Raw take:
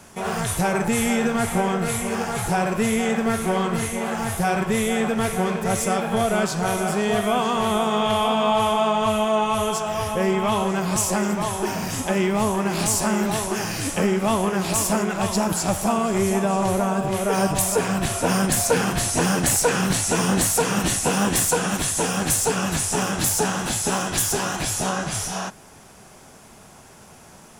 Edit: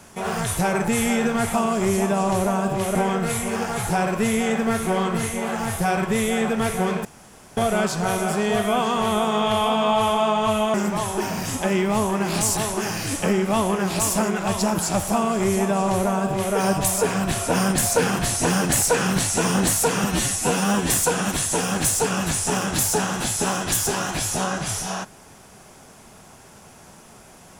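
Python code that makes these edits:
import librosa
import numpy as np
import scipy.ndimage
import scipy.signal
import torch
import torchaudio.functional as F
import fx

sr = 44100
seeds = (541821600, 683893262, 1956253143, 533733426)

y = fx.edit(x, sr, fx.room_tone_fill(start_s=5.64, length_s=0.52),
    fx.cut(start_s=9.33, length_s=1.86),
    fx.cut(start_s=13.02, length_s=0.29),
    fx.duplicate(start_s=15.87, length_s=1.41, to_s=1.54),
    fx.stretch_span(start_s=20.78, length_s=0.57, factor=1.5), tone=tone)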